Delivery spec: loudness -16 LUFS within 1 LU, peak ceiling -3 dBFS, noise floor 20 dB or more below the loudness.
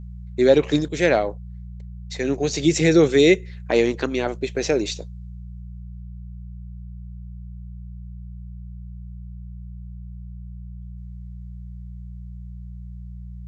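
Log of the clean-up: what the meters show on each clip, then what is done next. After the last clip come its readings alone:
hum 60 Hz; highest harmonic 180 Hz; hum level -34 dBFS; loudness -20.0 LUFS; peak level -3.5 dBFS; loudness target -16.0 LUFS
-> de-hum 60 Hz, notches 3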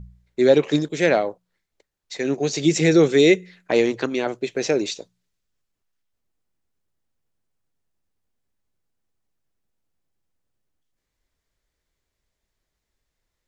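hum not found; loudness -20.0 LUFS; peak level -3.5 dBFS; loudness target -16.0 LUFS
-> trim +4 dB; peak limiter -3 dBFS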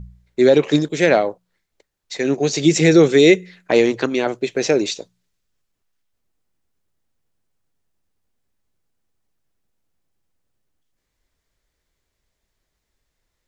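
loudness -16.5 LUFS; peak level -3.0 dBFS; noise floor -76 dBFS

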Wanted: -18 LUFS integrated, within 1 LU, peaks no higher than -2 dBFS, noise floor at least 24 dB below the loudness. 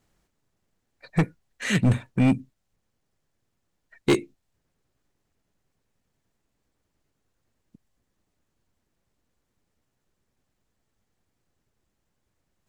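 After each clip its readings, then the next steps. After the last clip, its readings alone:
clipped samples 0.5%; clipping level -14.5 dBFS; loudness -25.0 LUFS; peak level -14.5 dBFS; loudness target -18.0 LUFS
-> clip repair -14.5 dBFS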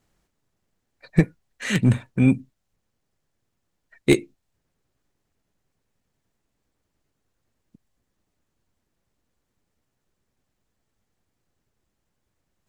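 clipped samples 0.0%; loudness -22.5 LUFS; peak level -5.5 dBFS; loudness target -18.0 LUFS
-> trim +4.5 dB; peak limiter -2 dBFS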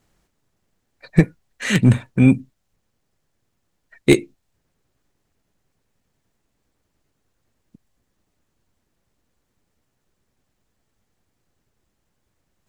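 loudness -18.5 LUFS; peak level -2.0 dBFS; noise floor -73 dBFS

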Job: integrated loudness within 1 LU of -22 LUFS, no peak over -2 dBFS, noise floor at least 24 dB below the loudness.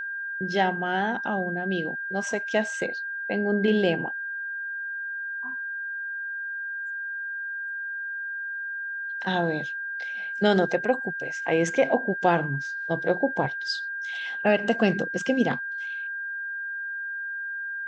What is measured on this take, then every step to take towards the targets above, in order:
steady tone 1.6 kHz; tone level -30 dBFS; loudness -27.5 LUFS; peak level -8.5 dBFS; loudness target -22.0 LUFS
-> band-stop 1.6 kHz, Q 30; trim +5.5 dB

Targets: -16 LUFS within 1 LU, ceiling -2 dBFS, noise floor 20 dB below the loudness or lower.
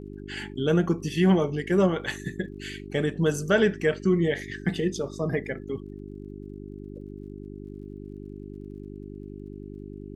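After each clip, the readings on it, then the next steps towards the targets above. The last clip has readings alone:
tick rate 32 per s; hum 50 Hz; highest harmonic 400 Hz; hum level -37 dBFS; loudness -26.0 LUFS; peak level -8.5 dBFS; loudness target -16.0 LUFS
-> de-click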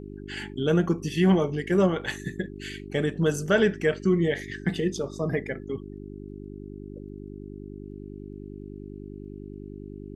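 tick rate 0 per s; hum 50 Hz; highest harmonic 400 Hz; hum level -37 dBFS
-> de-hum 50 Hz, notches 8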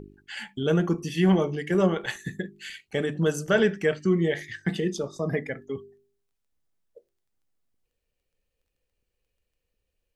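hum not found; loudness -26.0 LUFS; peak level -9.5 dBFS; loudness target -16.0 LUFS
-> trim +10 dB; peak limiter -2 dBFS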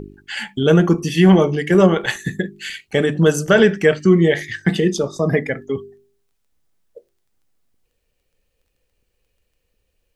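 loudness -16.5 LUFS; peak level -2.0 dBFS; noise floor -71 dBFS

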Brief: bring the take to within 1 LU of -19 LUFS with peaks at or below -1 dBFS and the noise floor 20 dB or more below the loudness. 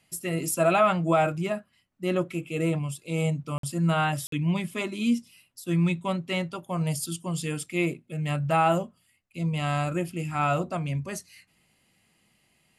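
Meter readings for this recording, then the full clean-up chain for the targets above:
dropouts 2; longest dropout 53 ms; loudness -27.5 LUFS; peak level -11.0 dBFS; loudness target -19.0 LUFS
-> interpolate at 3.58/4.27 s, 53 ms; trim +8.5 dB

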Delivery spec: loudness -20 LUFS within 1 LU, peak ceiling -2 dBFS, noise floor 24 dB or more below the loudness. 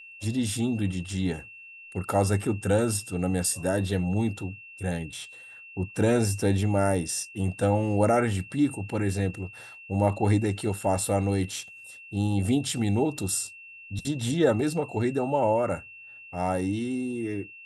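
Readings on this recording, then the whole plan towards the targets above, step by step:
steady tone 2.7 kHz; tone level -44 dBFS; loudness -27.0 LUFS; peak level -9.5 dBFS; loudness target -20.0 LUFS
-> band-stop 2.7 kHz, Q 30; trim +7 dB

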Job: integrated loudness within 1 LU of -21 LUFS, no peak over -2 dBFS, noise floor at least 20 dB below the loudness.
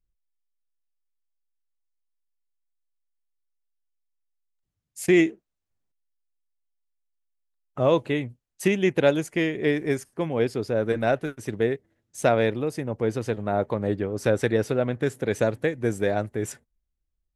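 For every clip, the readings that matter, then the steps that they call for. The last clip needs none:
loudness -25.0 LUFS; peak level -7.0 dBFS; loudness target -21.0 LUFS
-> trim +4 dB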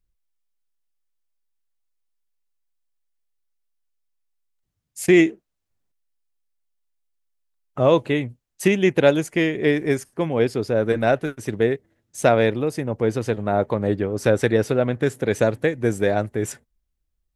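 loudness -21.0 LUFS; peak level -3.0 dBFS; noise floor -77 dBFS

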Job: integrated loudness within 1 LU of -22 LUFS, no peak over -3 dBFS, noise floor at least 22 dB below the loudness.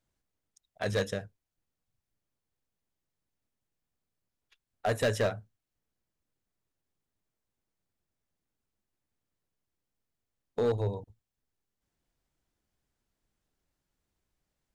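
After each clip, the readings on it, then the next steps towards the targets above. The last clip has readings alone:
clipped samples 0.3%; clipping level -22.0 dBFS; loudness -32.0 LUFS; peak level -22.0 dBFS; loudness target -22.0 LUFS
-> clip repair -22 dBFS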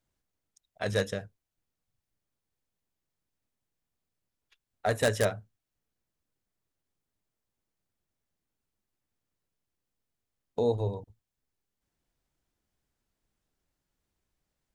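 clipped samples 0.0%; loudness -30.5 LUFS; peak level -13.0 dBFS; loudness target -22.0 LUFS
-> trim +8.5 dB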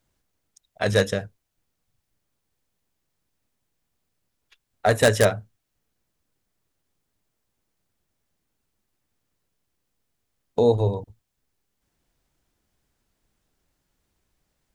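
loudness -22.0 LUFS; peak level -4.5 dBFS; noise floor -78 dBFS

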